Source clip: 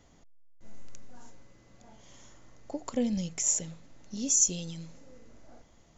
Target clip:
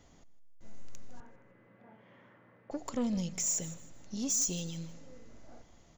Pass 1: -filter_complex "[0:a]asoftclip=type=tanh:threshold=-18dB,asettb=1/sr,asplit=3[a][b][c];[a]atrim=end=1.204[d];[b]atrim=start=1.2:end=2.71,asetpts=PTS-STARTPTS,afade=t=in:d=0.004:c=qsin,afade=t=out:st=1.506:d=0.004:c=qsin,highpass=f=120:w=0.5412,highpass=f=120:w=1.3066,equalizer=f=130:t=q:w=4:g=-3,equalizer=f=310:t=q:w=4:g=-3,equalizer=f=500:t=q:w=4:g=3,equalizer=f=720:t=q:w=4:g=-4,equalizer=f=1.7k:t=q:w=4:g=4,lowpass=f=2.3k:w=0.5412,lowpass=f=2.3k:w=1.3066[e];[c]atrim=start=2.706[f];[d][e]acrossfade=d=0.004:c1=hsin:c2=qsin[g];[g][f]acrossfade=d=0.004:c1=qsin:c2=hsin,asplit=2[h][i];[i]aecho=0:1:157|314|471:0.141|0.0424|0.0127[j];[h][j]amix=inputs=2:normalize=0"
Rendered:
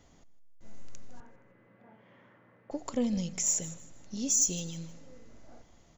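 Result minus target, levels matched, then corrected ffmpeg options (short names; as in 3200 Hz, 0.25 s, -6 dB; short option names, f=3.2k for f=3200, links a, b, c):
soft clip: distortion -9 dB
-filter_complex "[0:a]asoftclip=type=tanh:threshold=-27dB,asettb=1/sr,asplit=3[a][b][c];[a]atrim=end=1.204[d];[b]atrim=start=1.2:end=2.71,asetpts=PTS-STARTPTS,afade=t=in:d=0.004:c=qsin,afade=t=out:st=1.506:d=0.004:c=qsin,highpass=f=120:w=0.5412,highpass=f=120:w=1.3066,equalizer=f=130:t=q:w=4:g=-3,equalizer=f=310:t=q:w=4:g=-3,equalizer=f=500:t=q:w=4:g=3,equalizer=f=720:t=q:w=4:g=-4,equalizer=f=1.7k:t=q:w=4:g=4,lowpass=f=2.3k:w=0.5412,lowpass=f=2.3k:w=1.3066[e];[c]atrim=start=2.706[f];[d][e]acrossfade=d=0.004:c1=hsin:c2=qsin[g];[g][f]acrossfade=d=0.004:c1=qsin:c2=hsin,asplit=2[h][i];[i]aecho=0:1:157|314|471:0.141|0.0424|0.0127[j];[h][j]amix=inputs=2:normalize=0"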